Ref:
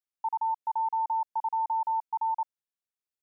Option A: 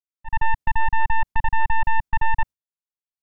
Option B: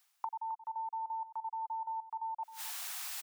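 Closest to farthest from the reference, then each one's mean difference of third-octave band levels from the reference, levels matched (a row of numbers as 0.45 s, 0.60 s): B, A; 1.0 dB, 11.5 dB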